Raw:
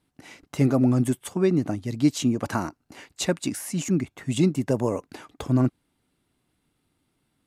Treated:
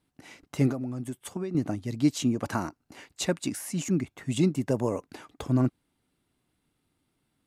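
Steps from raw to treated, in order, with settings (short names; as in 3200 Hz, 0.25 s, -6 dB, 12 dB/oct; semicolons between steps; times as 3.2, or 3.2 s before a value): 0.71–1.55 compressor 10:1, threshold -27 dBFS, peak gain reduction 11.5 dB; gain -3 dB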